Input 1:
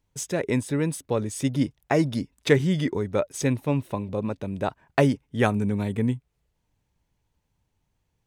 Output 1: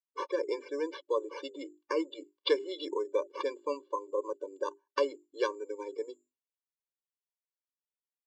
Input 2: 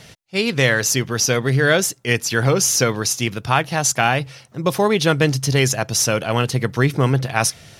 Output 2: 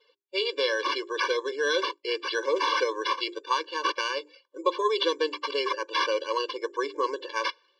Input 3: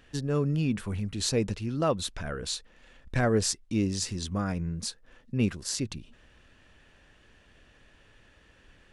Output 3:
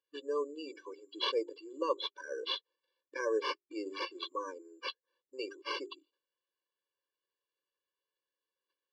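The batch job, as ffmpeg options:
-af "agate=range=-9dB:threshold=-54dB:ratio=16:detection=peak,bandreject=f=50:t=h:w=6,bandreject=f=100:t=h:w=6,bandreject=f=150:t=h:w=6,bandreject=f=200:t=h:w=6,bandreject=f=250:t=h:w=6,bandreject=f=300:t=h:w=6,bandreject=f=350:t=h:w=6,bandreject=f=400:t=h:w=6,afftdn=nr=22:nf=-37,acompressor=threshold=-32dB:ratio=1.5,acrusher=samples=6:mix=1:aa=0.000001,highpass=f=280:w=0.5412,highpass=f=280:w=1.3066,equalizer=f=290:t=q:w=4:g=-6,equalizer=f=600:t=q:w=4:g=4,equalizer=f=1.1k:t=q:w=4:g=7,equalizer=f=1.9k:t=q:w=4:g=-7,equalizer=f=3.2k:t=q:w=4:g=8,equalizer=f=4.6k:t=q:w=4:g=5,lowpass=f=5.1k:w=0.5412,lowpass=f=5.1k:w=1.3066,afftfilt=real='re*eq(mod(floor(b*sr/1024/300),2),1)':imag='im*eq(mod(floor(b*sr/1024/300),2),1)':win_size=1024:overlap=0.75"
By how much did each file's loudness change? -9.5, -9.5, -8.0 LU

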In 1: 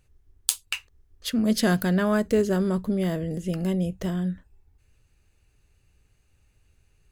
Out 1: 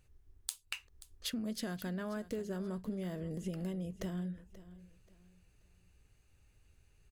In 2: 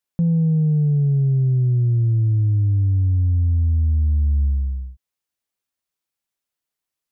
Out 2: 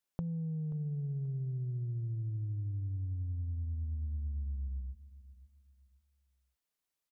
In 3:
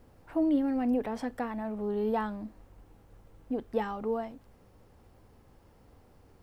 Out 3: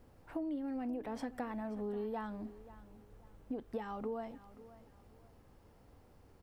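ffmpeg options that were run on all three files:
-af "acompressor=threshold=-32dB:ratio=12,aecho=1:1:532|1064|1596:0.141|0.0424|0.0127,volume=-3.5dB"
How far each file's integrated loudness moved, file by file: -15.0, -19.0, -9.5 LU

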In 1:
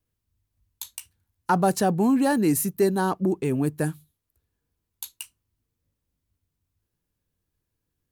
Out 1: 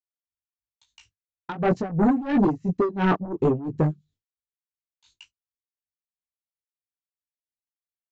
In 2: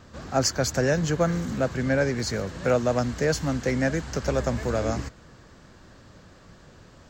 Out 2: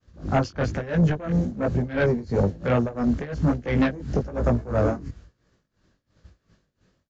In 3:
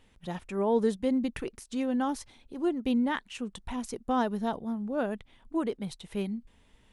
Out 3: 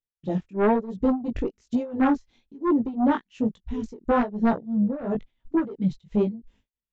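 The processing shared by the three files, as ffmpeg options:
-filter_complex "[0:a]afwtdn=0.0251,agate=range=-33dB:threshold=-58dB:ratio=3:detection=peak,acrossover=split=4000[a][b];[b]acompressor=threshold=-57dB:ratio=4:attack=1:release=60[c];[a][c]amix=inputs=2:normalize=0,equalizer=f=890:w=1.1:g=-5,acontrast=81,alimiter=limit=-14dB:level=0:latency=1:release=471,flanger=delay=17:depth=4.6:speed=1.1,aresample=16000,aeval=exprs='0.2*sin(PI/2*2*val(0)/0.2)':c=same,aresample=44100,tremolo=f=2.9:d=0.88"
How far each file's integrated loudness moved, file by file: -0.5, +1.0, +6.0 LU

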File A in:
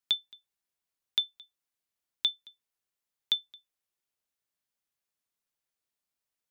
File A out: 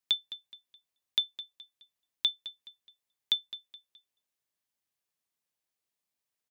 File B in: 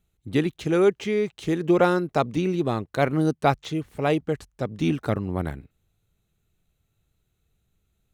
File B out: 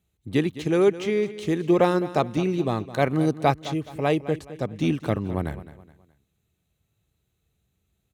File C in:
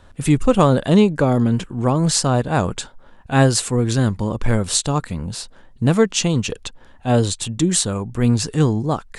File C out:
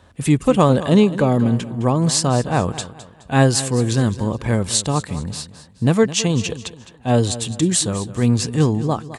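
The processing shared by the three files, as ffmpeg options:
-filter_complex "[0:a]highpass=f=51:w=0.5412,highpass=f=51:w=1.3066,bandreject=f=1.4k:w=12,asplit=2[a][b];[b]aecho=0:1:211|422|633:0.178|0.0658|0.0243[c];[a][c]amix=inputs=2:normalize=0"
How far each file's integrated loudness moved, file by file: -1.5, 0.0, 0.0 LU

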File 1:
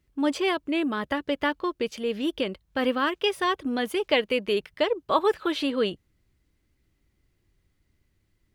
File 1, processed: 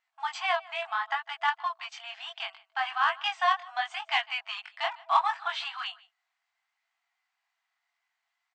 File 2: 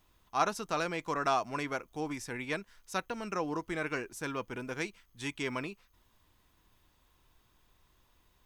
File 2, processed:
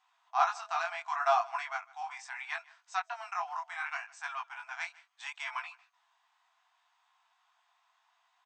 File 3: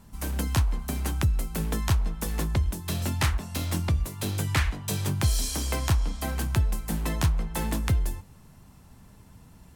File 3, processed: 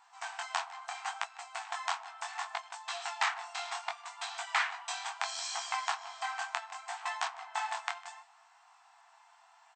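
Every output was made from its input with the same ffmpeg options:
-filter_complex "[0:a]flanger=delay=17:depth=7.4:speed=0.7,highshelf=f=3.1k:g=-11.5,aecho=1:1:153:0.0708,asplit=2[a][b];[b]asoftclip=type=hard:threshold=-25dB,volume=-8dB[c];[a][c]amix=inputs=2:normalize=0,afftfilt=real='re*between(b*sr/4096,660,8500)':imag='im*between(b*sr/4096,660,8500)':win_size=4096:overlap=0.75,volume=4dB"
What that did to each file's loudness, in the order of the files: -3.5, 0.0, -8.5 LU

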